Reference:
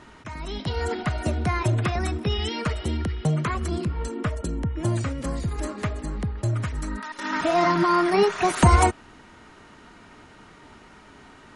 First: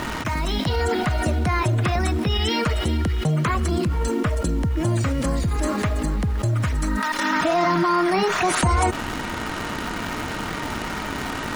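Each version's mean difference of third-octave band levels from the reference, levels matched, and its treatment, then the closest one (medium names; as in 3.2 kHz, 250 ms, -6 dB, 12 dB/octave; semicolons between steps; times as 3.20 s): 9.0 dB: band-stop 400 Hz, Q 12; in parallel at -9 dB: bit crusher 7-bit; on the sum: level flattener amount 70%; trim -7.5 dB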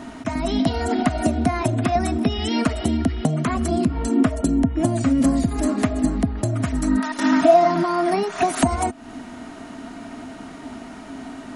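3.5 dB: treble shelf 8.1 kHz +11 dB; compression 16:1, threshold -27 dBFS, peak gain reduction 17 dB; small resonant body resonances 260/670 Hz, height 17 dB, ringing for 65 ms; trim +5.5 dB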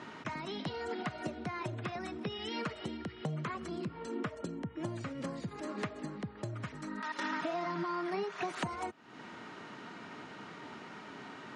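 6.0 dB: low-pass 5.5 kHz 12 dB/octave; compression 10:1, threshold -35 dBFS, peak gain reduction 23 dB; high-pass 130 Hz 24 dB/octave; trim +1.5 dB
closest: second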